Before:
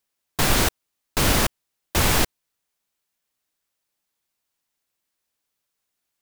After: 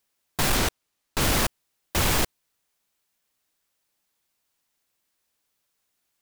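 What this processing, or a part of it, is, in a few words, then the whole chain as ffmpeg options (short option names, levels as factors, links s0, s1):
saturation between pre-emphasis and de-emphasis: -filter_complex "[0:a]highshelf=f=4000:g=6.5,asoftclip=type=tanh:threshold=0.0944,highshelf=f=4000:g=-6.5,asettb=1/sr,asplit=3[s0][s1][s2];[s0]atrim=end=0.574[s3];[s1]atrim=start=0.57:end=1.21,asetpts=PTS-STARTPTS,afade=t=in:d=0.004:c=qsin,afade=t=out:st=0.636:d=0.004:c=qsin,highshelf=f=9800:g=-5.5[s4];[s2]atrim=start=1.206[s5];[s3][s4]acrossfade=d=0.004:c1=hsin:c2=qsin[s6];[s6][s5]acrossfade=d=0.004:c1=qsin:c2=hsin,volume=1.5"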